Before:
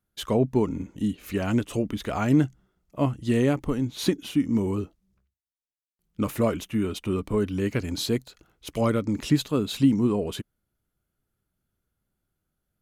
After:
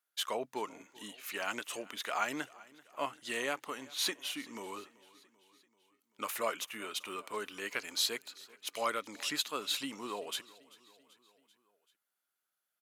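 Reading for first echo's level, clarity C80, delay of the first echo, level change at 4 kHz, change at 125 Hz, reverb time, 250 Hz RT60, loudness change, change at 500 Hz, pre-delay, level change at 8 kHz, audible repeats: -22.0 dB, no reverb, 387 ms, 0.0 dB, -34.0 dB, no reverb, no reverb, -11.0 dB, -13.0 dB, no reverb, 0.0 dB, 3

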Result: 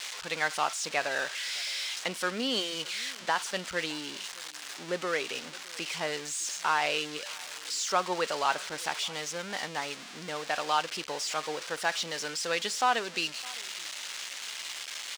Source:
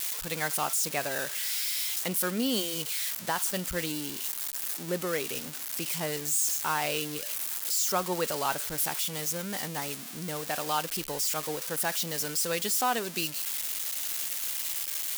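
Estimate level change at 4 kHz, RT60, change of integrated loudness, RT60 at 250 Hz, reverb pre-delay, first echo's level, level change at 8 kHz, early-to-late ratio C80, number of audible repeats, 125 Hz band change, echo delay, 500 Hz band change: +2.0 dB, no reverb, -2.5 dB, no reverb, no reverb, -23.0 dB, -6.0 dB, no reverb, 1, -8.5 dB, 613 ms, -0.5 dB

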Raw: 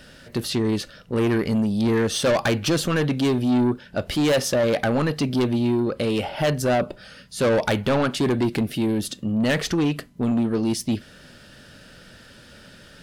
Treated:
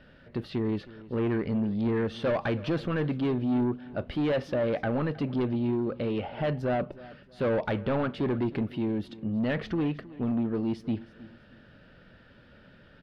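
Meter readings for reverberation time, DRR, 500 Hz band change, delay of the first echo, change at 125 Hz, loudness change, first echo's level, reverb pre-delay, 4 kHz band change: no reverb, no reverb, -7.0 dB, 316 ms, -6.0 dB, -7.0 dB, -19.0 dB, no reverb, -15.5 dB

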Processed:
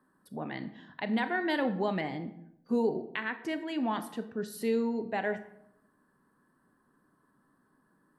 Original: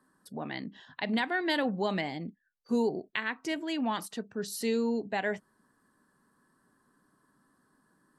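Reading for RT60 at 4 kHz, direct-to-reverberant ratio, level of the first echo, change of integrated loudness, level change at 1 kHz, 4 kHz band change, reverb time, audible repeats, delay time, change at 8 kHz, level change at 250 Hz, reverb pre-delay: 0.45 s, 10.0 dB, no echo, -0.5 dB, 0.0 dB, -5.5 dB, 0.75 s, no echo, no echo, -7.5 dB, 0.0 dB, 25 ms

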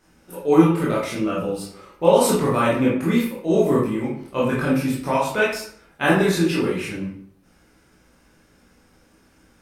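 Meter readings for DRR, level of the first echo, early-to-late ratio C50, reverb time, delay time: -6.5 dB, no echo, 2.5 dB, 0.60 s, no echo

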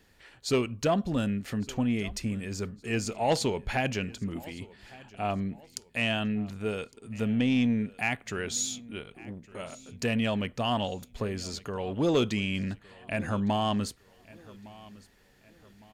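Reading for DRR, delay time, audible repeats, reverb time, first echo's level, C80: no reverb, 1160 ms, 2, no reverb, -21.5 dB, no reverb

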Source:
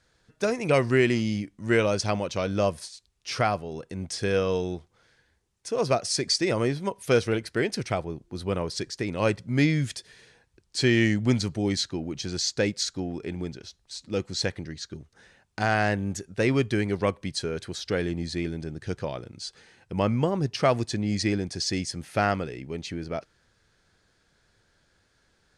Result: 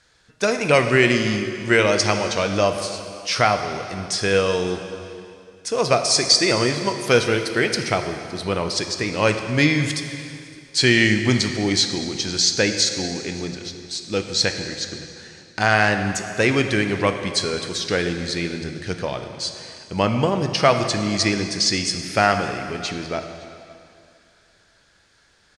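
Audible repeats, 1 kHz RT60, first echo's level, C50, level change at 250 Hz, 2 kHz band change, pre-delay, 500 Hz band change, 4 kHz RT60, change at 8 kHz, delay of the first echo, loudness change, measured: 1, 2.4 s, -24.0 dB, 7.5 dB, +4.0 dB, +10.0 dB, 5 ms, +5.5 dB, 2.3 s, +10.0 dB, 564 ms, +6.5 dB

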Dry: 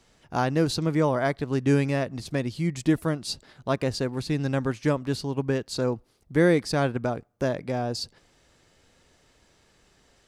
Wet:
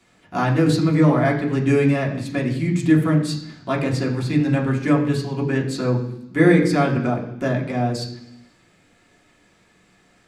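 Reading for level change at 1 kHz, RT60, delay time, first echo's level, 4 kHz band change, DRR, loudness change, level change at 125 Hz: +5.0 dB, 0.80 s, no echo, no echo, +1.0 dB, -3.0 dB, +6.5 dB, +7.5 dB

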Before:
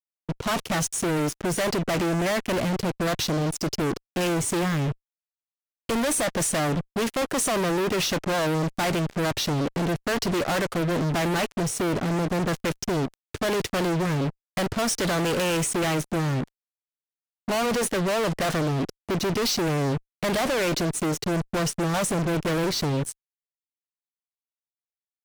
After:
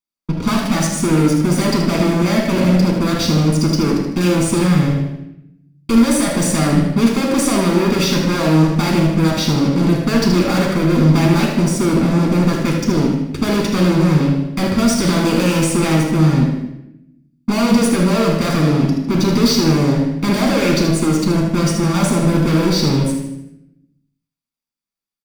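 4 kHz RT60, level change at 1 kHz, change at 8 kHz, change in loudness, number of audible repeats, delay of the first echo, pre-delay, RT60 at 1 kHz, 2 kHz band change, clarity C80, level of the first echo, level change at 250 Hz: 0.75 s, +5.5 dB, +5.0 dB, +10.0 dB, 1, 77 ms, 3 ms, 0.80 s, +5.0 dB, 5.0 dB, -7.0 dB, +13.5 dB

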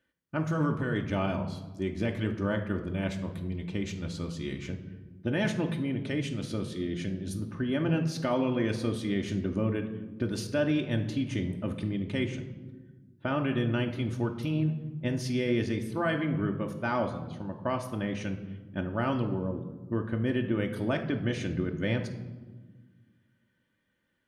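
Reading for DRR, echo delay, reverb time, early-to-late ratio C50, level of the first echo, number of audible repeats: 3.0 dB, no echo, 1.4 s, 10.0 dB, no echo, no echo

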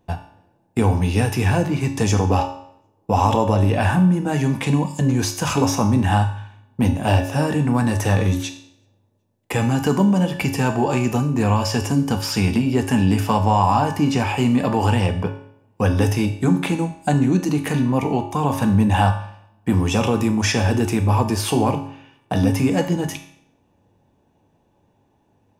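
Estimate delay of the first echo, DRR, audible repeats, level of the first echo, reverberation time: no echo, 4.0 dB, no echo, no echo, 0.65 s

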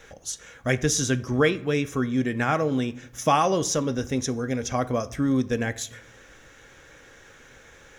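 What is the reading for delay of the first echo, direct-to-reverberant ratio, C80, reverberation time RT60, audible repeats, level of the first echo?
no echo, 11.0 dB, 21.5 dB, 0.65 s, no echo, no echo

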